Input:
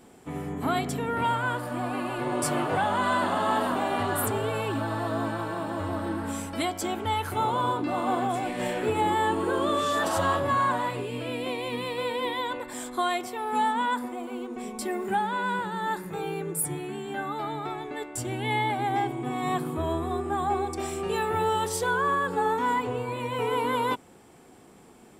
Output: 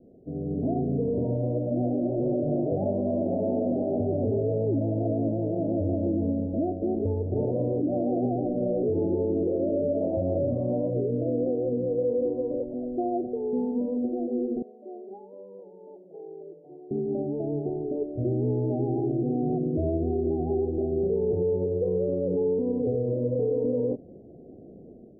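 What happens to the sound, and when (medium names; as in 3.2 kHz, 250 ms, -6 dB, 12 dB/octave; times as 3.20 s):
14.62–16.91 s: Bessel high-pass 1.2 kHz
whole clip: steep low-pass 650 Hz 72 dB/octave; peak limiter -26 dBFS; level rider gain up to 7.5 dB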